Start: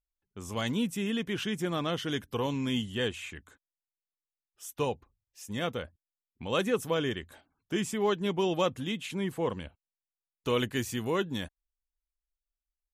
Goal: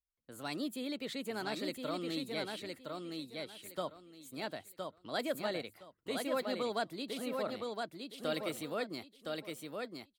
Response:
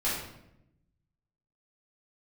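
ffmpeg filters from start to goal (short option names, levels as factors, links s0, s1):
-filter_complex "[0:a]acrossover=split=130|7100[s0][s1][s2];[s0]acompressor=threshold=0.00112:ratio=6[s3];[s3][s1][s2]amix=inputs=3:normalize=0,asetrate=56007,aresample=44100,aecho=1:1:1015|2030|3045:0.631|0.139|0.0305,volume=0.422"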